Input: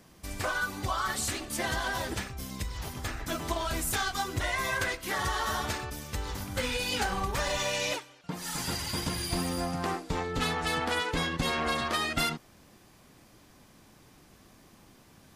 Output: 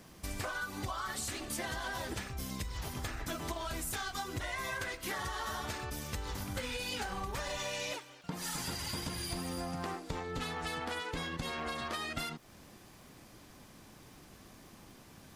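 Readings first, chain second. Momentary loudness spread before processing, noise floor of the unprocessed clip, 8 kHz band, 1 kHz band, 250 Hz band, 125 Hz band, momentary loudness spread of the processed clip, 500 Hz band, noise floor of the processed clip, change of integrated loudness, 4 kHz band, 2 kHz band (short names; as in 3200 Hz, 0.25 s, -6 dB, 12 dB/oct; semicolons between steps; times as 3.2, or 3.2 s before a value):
8 LU, -58 dBFS, -6.0 dB, -7.5 dB, -6.5 dB, -6.0 dB, 18 LU, -7.0 dB, -56 dBFS, -7.0 dB, -7.0 dB, -7.5 dB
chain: compressor 6:1, threshold -37 dBFS, peak gain reduction 12.5 dB; crackle 110/s -54 dBFS; gain +1.5 dB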